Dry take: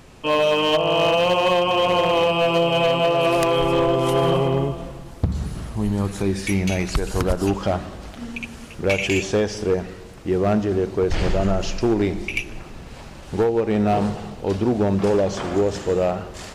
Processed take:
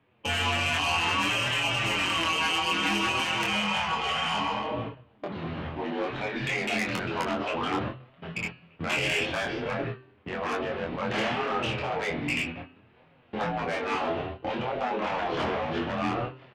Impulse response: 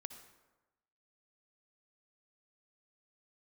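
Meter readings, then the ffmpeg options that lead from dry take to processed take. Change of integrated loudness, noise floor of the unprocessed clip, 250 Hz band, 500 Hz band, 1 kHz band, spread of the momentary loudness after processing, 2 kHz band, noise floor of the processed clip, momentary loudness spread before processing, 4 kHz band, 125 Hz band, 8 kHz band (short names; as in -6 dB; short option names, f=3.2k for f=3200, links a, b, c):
-7.5 dB, -39 dBFS, -10.5 dB, -13.5 dB, -5.0 dB, 10 LU, +0.5 dB, -60 dBFS, 14 LU, -2.0 dB, -11.5 dB, -4.5 dB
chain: -filter_complex "[0:a]agate=range=-22dB:threshold=-31dB:ratio=16:detection=peak,afftfilt=real='re*lt(hypot(re,im),0.224)':imag='im*lt(hypot(re,im),0.224)':win_size=1024:overlap=0.75,highpass=f=150:t=q:w=0.5412,highpass=f=150:t=q:w=1.307,lowpass=f=3.2k:t=q:w=0.5176,lowpass=f=3.2k:t=q:w=0.7071,lowpass=f=3.2k:t=q:w=1.932,afreqshift=-62,highshelf=f=2.2k:g=-2,asoftclip=type=tanh:threshold=-26.5dB,flanger=delay=7.1:depth=6.6:regen=7:speed=0.61:shape=triangular,asplit=2[a][b];[b]adelay=24,volume=-3dB[c];[a][c]amix=inputs=2:normalize=0,bandreject=f=128.9:t=h:w=4,bandreject=f=257.8:t=h:w=4,bandreject=f=386.7:t=h:w=4,bandreject=f=515.6:t=h:w=4,bandreject=f=644.5:t=h:w=4,bandreject=f=773.4:t=h:w=4,bandreject=f=902.3:t=h:w=4,bandreject=f=1.0312k:t=h:w=4,bandreject=f=1.1601k:t=h:w=4,bandreject=f=1.289k:t=h:w=4,bandreject=f=1.4179k:t=h:w=4,bandreject=f=1.5468k:t=h:w=4,bandreject=f=1.6757k:t=h:w=4,bandreject=f=1.8046k:t=h:w=4,bandreject=f=1.9335k:t=h:w=4,bandreject=f=2.0624k:t=h:w=4,bandreject=f=2.1913k:t=h:w=4,bandreject=f=2.3202k:t=h:w=4,bandreject=f=2.4491k:t=h:w=4,bandreject=f=2.578k:t=h:w=4,bandreject=f=2.7069k:t=h:w=4,bandreject=f=2.8358k:t=h:w=4,bandreject=f=2.9647k:t=h:w=4,bandreject=f=3.0936k:t=h:w=4,bandreject=f=3.2225k:t=h:w=4,bandreject=f=3.3514k:t=h:w=4,bandreject=f=3.4803k:t=h:w=4,bandreject=f=3.6092k:t=h:w=4,bandreject=f=3.7381k:t=h:w=4,bandreject=f=3.867k:t=h:w=4,bandreject=f=3.9959k:t=h:w=4,bandreject=f=4.1248k:t=h:w=4,bandreject=f=4.2537k:t=h:w=4,bandreject=f=4.3826k:t=h:w=4,bandreject=f=4.5115k:t=h:w=4,bandreject=f=4.6404k:t=h:w=4,bandreject=f=4.7693k:t=h:w=4,bandreject=f=4.8982k:t=h:w=4,crystalizer=i=2:c=0,volume=6dB"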